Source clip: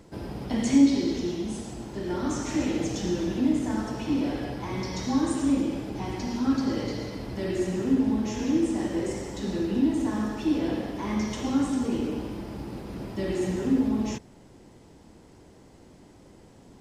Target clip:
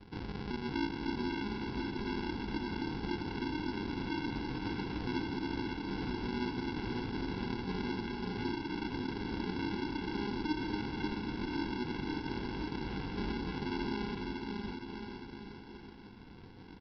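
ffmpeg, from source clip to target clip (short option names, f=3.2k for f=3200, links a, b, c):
-af "acompressor=threshold=-33dB:ratio=6,flanger=delay=19:depth=2.2:speed=0.57,aresample=11025,acrusher=samples=18:mix=1:aa=0.000001,aresample=44100,aecho=1:1:550|1018|1415|1753|2040:0.631|0.398|0.251|0.158|0.1"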